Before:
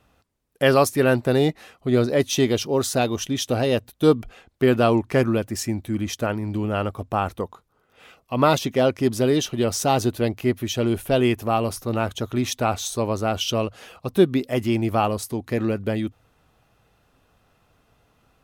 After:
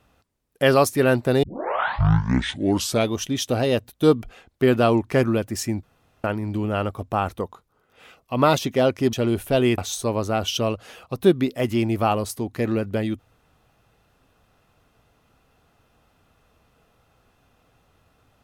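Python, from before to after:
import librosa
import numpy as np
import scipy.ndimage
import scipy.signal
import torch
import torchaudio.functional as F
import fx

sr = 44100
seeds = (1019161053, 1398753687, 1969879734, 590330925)

y = fx.edit(x, sr, fx.tape_start(start_s=1.43, length_s=1.72),
    fx.room_tone_fill(start_s=5.83, length_s=0.41),
    fx.cut(start_s=9.13, length_s=1.59),
    fx.cut(start_s=11.37, length_s=1.34), tone=tone)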